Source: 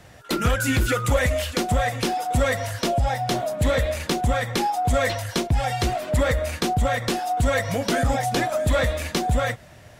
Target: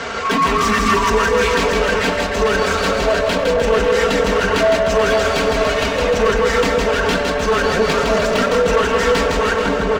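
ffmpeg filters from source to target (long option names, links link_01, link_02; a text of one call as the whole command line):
ffmpeg -i in.wav -filter_complex "[0:a]highpass=frequency=48:width=0.5412,highpass=frequency=48:width=1.3066,bandreject=frequency=87.36:width_type=h:width=4,bandreject=frequency=174.72:width_type=h:width=4,bandreject=frequency=262.08:width_type=h:width=4,bandreject=frequency=349.44:width_type=h:width=4,bandreject=frequency=436.8:width_type=h:width=4,bandreject=frequency=524.16:width_type=h:width=4,bandreject=frequency=611.52:width_type=h:width=4,bandreject=frequency=698.88:width_type=h:width=4,bandreject=frequency=786.24:width_type=h:width=4,acontrast=64,asplit=2[link_01][link_02];[link_02]adelay=498,lowpass=frequency=990:poles=1,volume=-7.5dB,asplit=2[link_03][link_04];[link_04]adelay=498,lowpass=frequency=990:poles=1,volume=0.25,asplit=2[link_05][link_06];[link_06]adelay=498,lowpass=frequency=990:poles=1,volume=0.25[link_07];[link_03][link_05][link_07]amix=inputs=3:normalize=0[link_08];[link_01][link_08]amix=inputs=2:normalize=0,aresample=22050,aresample=44100,asetrate=35002,aresample=44100,atempo=1.25992,acompressor=threshold=-26dB:ratio=3,asoftclip=type=tanh:threshold=-24.5dB,asplit=2[link_09][link_10];[link_10]highpass=frequency=720:poles=1,volume=23dB,asoftclip=type=tanh:threshold=-18dB[link_11];[link_09][link_11]amix=inputs=2:normalize=0,lowpass=frequency=2500:poles=1,volume=-6dB,aecho=1:1:4.4:0.73,asplit=2[link_12][link_13];[link_13]aecho=0:1:160|304|433.6|550.2|655.2:0.631|0.398|0.251|0.158|0.1[link_14];[link_12][link_14]amix=inputs=2:normalize=0,volume=6dB" out.wav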